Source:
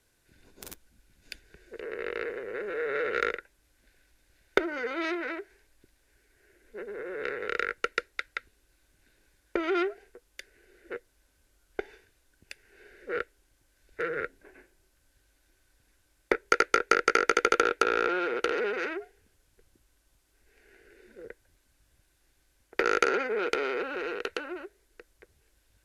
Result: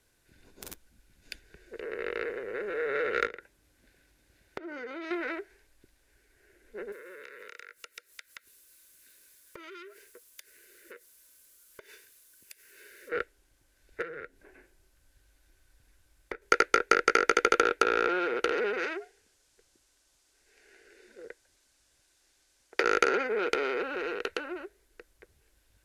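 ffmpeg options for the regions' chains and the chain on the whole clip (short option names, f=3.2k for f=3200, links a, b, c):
-filter_complex "[0:a]asettb=1/sr,asplit=3[a][b][c];[a]atrim=end=3.264[d];[b]atrim=start=3.26:end=5.11,asetpts=PTS-STARTPTS,afade=t=in:d=0.004:c=qsin,afade=t=out:st=1.846:d=0.004:c=qsin,lowshelf=f=310:g=10.5,acompressor=threshold=-36dB:ratio=8:attack=3.2:release=140:knee=1:detection=peak,highpass=f=160:p=1[e];[c]atrim=start=5.106[f];[d][e]acrossfade=d=0.004:c1=hsin:c2=qsin[g];[g][f]acrossfade=d=0.004:c1=qsin:c2=hsin,asettb=1/sr,asplit=3[h][i][j];[h]atrim=end=6.924[k];[i]atrim=start=6.92:end=13.12,asetpts=PTS-STARTPTS,afade=t=in:d=0.004:c=qsin,afade=t=out:st=6.196:d=0.004:c=qsin,aemphasis=mode=production:type=riaa,acompressor=threshold=-44dB:ratio=6:attack=3.2:release=140:knee=1:detection=peak,asuperstop=centerf=760:order=12:qfactor=3[l];[j]atrim=start=13.116[m];[k][l]acrossfade=d=0.004:c1=hsin:c2=qsin[n];[n][m]acrossfade=d=0.004:c1=qsin:c2=hsin,asettb=1/sr,asplit=3[o][p][q];[o]atrim=end=14.024[r];[p]atrim=start=14.02:end=16.42,asetpts=PTS-STARTPTS,afade=t=in:d=0.004:c=qsin,afade=t=out:st=2.396:d=0.004:c=qsin,asubboost=boost=2:cutoff=170,acompressor=threshold=-54dB:ratio=1.5:attack=3.2:release=140:knee=1:detection=peak[s];[q]atrim=start=16.416[t];[r][s]acrossfade=d=0.004:c1=hsin:c2=qsin[u];[u][t]acrossfade=d=0.004:c1=qsin:c2=hsin,asettb=1/sr,asplit=3[v][w][x];[v]atrim=end=18.844[y];[w]atrim=start=18.84:end=22.84,asetpts=PTS-STARTPTS,afade=t=in:d=0.004:c=qsin,afade=t=out:st=3.996:d=0.004:c=qsin,lowpass=7.3k,bass=f=250:g=-11,treble=f=4k:g=10[z];[x]atrim=start=22.836[aa];[y][z]acrossfade=d=0.004:c1=hsin:c2=qsin[ab];[ab][aa]acrossfade=d=0.004:c1=qsin:c2=hsin"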